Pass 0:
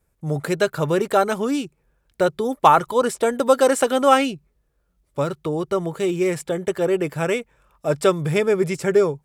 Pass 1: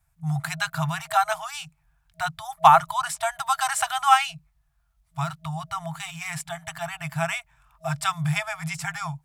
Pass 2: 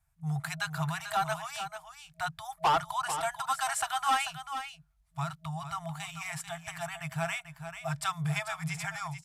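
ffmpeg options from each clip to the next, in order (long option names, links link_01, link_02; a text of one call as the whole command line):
ffmpeg -i in.wav -af "afftfilt=real='re*(1-between(b*sr/4096,170,640))':imag='im*(1-between(b*sr/4096,170,640))':win_size=4096:overlap=0.75" out.wav
ffmpeg -i in.wav -af "asoftclip=type=tanh:threshold=-15.5dB,aecho=1:1:441:0.335,aresample=32000,aresample=44100,volume=-5.5dB" out.wav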